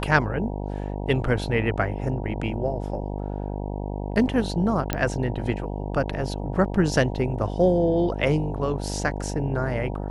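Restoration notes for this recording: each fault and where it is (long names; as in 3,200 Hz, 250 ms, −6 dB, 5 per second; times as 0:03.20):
mains buzz 50 Hz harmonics 19 −30 dBFS
0:04.93: click −8 dBFS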